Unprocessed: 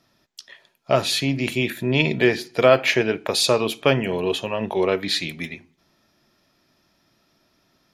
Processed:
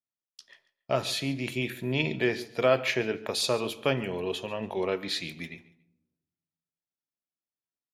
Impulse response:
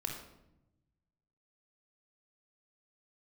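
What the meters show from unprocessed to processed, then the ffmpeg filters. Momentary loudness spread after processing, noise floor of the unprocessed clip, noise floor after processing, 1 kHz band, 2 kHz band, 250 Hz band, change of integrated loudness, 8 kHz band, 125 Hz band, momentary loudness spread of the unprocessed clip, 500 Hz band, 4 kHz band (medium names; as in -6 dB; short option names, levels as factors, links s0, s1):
8 LU, -66 dBFS, under -85 dBFS, -8.5 dB, -8.5 dB, -8.5 dB, -8.5 dB, -8.5 dB, -8.0 dB, 8 LU, -8.5 dB, -8.5 dB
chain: -filter_complex "[0:a]agate=range=0.0224:threshold=0.00794:ratio=3:detection=peak,aecho=1:1:141|282:0.112|0.0258,asplit=2[s0][s1];[1:a]atrim=start_sample=2205,adelay=23[s2];[s1][s2]afir=irnorm=-1:irlink=0,volume=0.119[s3];[s0][s3]amix=inputs=2:normalize=0,volume=0.376"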